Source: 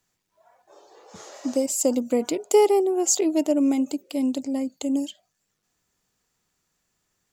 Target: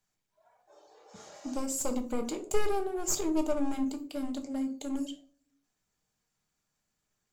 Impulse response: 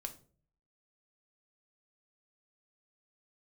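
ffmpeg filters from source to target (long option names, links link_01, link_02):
-filter_complex "[0:a]aeval=exprs='clip(val(0),-1,0.0841)':channel_layout=same[link_01];[1:a]atrim=start_sample=2205[link_02];[link_01][link_02]afir=irnorm=-1:irlink=0,volume=-4.5dB" -ar 44100 -c:a nellymoser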